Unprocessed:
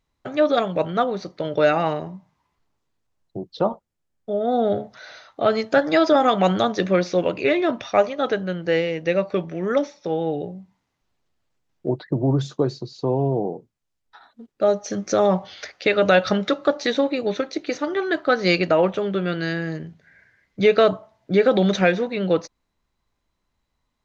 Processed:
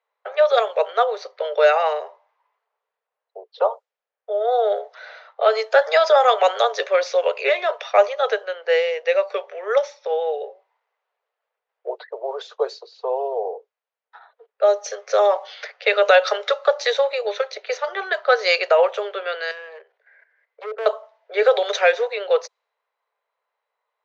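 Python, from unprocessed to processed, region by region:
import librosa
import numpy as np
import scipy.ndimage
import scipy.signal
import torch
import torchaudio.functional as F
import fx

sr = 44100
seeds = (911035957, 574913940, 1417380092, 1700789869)

y = fx.chain(x, sr, fx.env_lowpass_down(base_hz=540.0, full_db=-13.5),
    fx.level_steps(step_db=11),
    fx.clip_hard(threshold_db=-26.5), at=(19.51, 20.86))
y = scipy.signal.sosfilt(scipy.signal.butter(16, 430.0, 'highpass', fs=sr, output='sos'), y)
y = fx.env_lowpass(y, sr, base_hz=2100.0, full_db=-18.0)
y = F.gain(torch.from_numpy(y), 3.0).numpy()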